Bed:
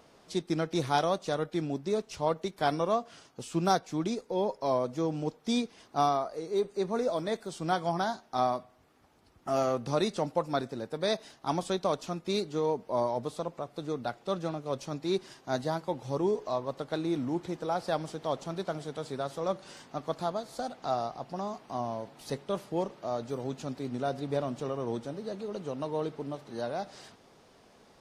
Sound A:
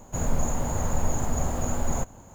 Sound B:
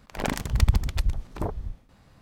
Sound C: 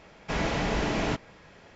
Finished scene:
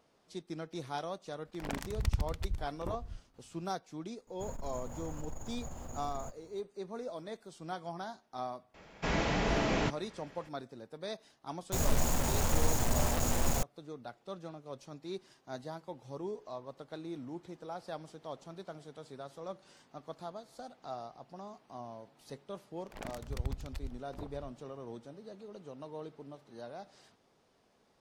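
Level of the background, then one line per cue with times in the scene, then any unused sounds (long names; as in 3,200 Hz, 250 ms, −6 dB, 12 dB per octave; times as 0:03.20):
bed −11.5 dB
0:01.45: mix in B −11 dB
0:04.27: mix in A −16 dB + saturating transformer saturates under 39 Hz
0:08.74: mix in C −3 dB
0:11.59: mix in A −4.5 dB + bit reduction 5 bits
0:22.77: mix in B −16.5 dB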